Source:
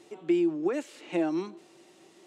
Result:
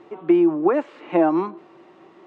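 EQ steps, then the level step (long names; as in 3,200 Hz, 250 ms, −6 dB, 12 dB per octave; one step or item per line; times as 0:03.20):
dynamic equaliser 760 Hz, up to +6 dB, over −42 dBFS, Q 1.2
low-pass filter 2,000 Hz 12 dB per octave
parametric band 1,100 Hz +7.5 dB 0.63 octaves
+7.5 dB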